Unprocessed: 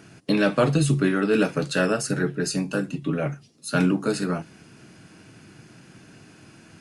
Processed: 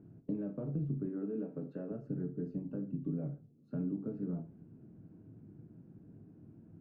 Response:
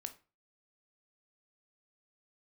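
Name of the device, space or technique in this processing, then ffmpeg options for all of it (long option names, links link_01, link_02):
television next door: -filter_complex "[0:a]asettb=1/sr,asplit=3[link_01][link_02][link_03];[link_01]atrim=end=1.064[link_04];[link_02]atrim=start=1.06:end=1.92,asetpts=PTS-STARTPTS,afade=type=in:duration=0.004:curve=qsin,afade=type=out:start_time=0.856:duration=0.004:curve=qsin,highpass=200[link_05];[link_03]atrim=start=1.916[link_06];[link_04][link_05]acrossfade=duration=0.004:curve1=hsin:curve2=qsin[link_07];[link_07][link_06]acrossfade=duration=0.004:curve1=qsin:curve2=hsin,acompressor=threshold=-28dB:ratio=4,lowpass=330[link_08];[1:a]atrim=start_sample=2205[link_09];[link_08][link_09]afir=irnorm=-1:irlink=0,volume=-1dB"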